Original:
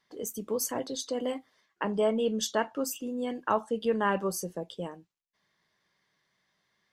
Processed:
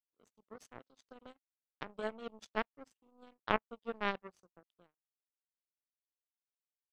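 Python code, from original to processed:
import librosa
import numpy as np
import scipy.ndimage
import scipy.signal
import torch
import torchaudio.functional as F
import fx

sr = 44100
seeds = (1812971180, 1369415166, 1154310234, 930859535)

y = scipy.signal.sosfilt(scipy.signal.butter(4, 55.0, 'highpass', fs=sr, output='sos'), x)
y = fx.power_curve(y, sr, exponent=3.0)
y = fx.air_absorb(y, sr, metres=78.0)
y = y * 10.0 ** (3.0 / 20.0)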